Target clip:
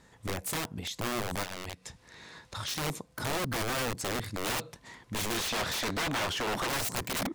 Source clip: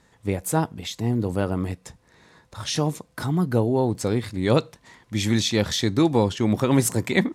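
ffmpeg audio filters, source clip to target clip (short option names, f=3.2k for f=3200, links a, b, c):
-filter_complex "[0:a]aeval=exprs='(mod(10.6*val(0)+1,2)-1)/10.6':c=same,asettb=1/sr,asplit=3[a][b][c];[a]atrim=end=1.434[d];[b]atrim=start=1.43:end=2.74,asetpts=PTS-STARTPTS,afade=t=in:d=0.004:c=qsin,afade=t=out:st=1.306:d=0.004:c=qsin,equalizer=f=3.7k:w=0.42:g=8[e];[c]atrim=start=2.736[f];[d][e]acrossfade=d=0.004:c1=hsin:c2=qsin[g];[g][f]acrossfade=d=0.004:c1=qsin:c2=hsin,alimiter=level_in=2.5dB:limit=-24dB:level=0:latency=1:release=158,volume=-2.5dB,asettb=1/sr,asplit=3[h][i][j];[h]atrim=end=5.374[k];[i]atrim=start=5.37:end=6.68,asetpts=PTS-STARTPTS,afade=t=in:d=0.004:c=qsin,afade=t=out:st=1.306:d=0.004:c=qsin,asplit=2[l][m];[m]highpass=f=720:p=1,volume=20dB,asoftclip=type=tanh:threshold=-26.5dB[n];[l][n]amix=inputs=2:normalize=0,lowpass=f=5.2k:p=1,volume=-6dB[o];[j]atrim=start=6.676[p];[k][o]acrossfade=d=0.004:c1=hsin:c2=qsin[q];[q][p]acrossfade=d=0.004:c1=qsin:c2=hsin"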